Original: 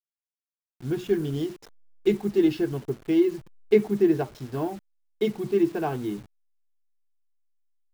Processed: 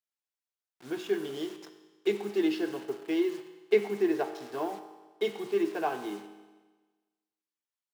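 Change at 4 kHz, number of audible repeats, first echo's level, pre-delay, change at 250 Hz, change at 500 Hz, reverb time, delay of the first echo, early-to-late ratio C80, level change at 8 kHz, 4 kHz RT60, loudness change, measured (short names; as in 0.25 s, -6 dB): 0.0 dB, none, none, 5 ms, -7.5 dB, -5.0 dB, 1.3 s, none, 11.5 dB, n/a, 1.3 s, -5.5 dB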